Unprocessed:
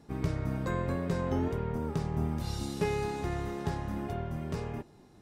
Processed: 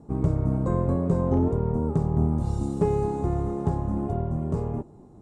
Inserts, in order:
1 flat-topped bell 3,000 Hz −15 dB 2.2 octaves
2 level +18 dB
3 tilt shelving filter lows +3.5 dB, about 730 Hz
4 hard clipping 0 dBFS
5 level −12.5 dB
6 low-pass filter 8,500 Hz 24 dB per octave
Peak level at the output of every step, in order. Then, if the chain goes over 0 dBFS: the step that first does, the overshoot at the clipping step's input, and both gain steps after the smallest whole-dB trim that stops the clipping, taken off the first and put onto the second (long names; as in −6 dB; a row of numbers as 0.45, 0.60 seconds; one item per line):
−16.5, +1.5, +4.0, 0.0, −12.5, −12.5 dBFS
step 2, 4.0 dB
step 2 +14 dB, step 5 −8.5 dB